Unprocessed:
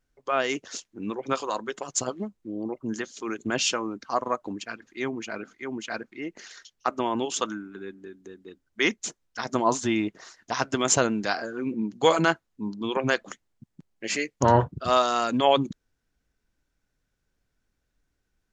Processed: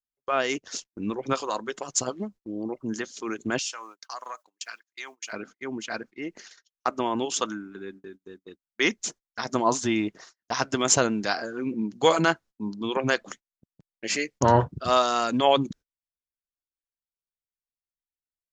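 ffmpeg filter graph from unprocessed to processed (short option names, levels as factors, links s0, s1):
-filter_complex "[0:a]asettb=1/sr,asplit=3[s0][s1][s2];[s0]atrim=end=0.584[s3];[s1]atrim=start=0.58:end=1.34,asetpts=PTS-STARTPTS,afade=t=in:d=0.004:c=qsin,afade=t=out:st=0.756:d=0.004:c=qsin,agate=range=0.224:threshold=0.00355:ratio=16:release=100:detection=peak,lowshelf=f=140:g=9[s4];[s2]atrim=start=1.336[s5];[s3][s4]acrossfade=d=0.004:c1=hsin:c2=qsin[s6];[s6][s5]acrossfade=d=0.004:c1=qsin:c2=hsin,asettb=1/sr,asplit=3[s7][s8][s9];[s7]atrim=end=3.594[s10];[s8]atrim=start=3.59:end=5.33,asetpts=PTS-STARTPTS,afade=t=in:d=0.004:c=qsin,afade=t=out:st=1.736:d=0.004:c=qsin,highpass=990,aemphasis=mode=production:type=50fm,acompressor=threshold=0.0224:ratio=4:attack=3.2:release=140:knee=1:detection=peak[s11];[s9]atrim=start=5.326[s12];[s10][s11]acrossfade=d=0.004:c1=hsin:c2=qsin[s13];[s13][s12]acrossfade=d=0.004:c1=qsin:c2=hsin,agate=range=0.0251:threshold=0.00631:ratio=16:detection=peak,equalizer=f=5300:t=o:w=0.66:g=3.5"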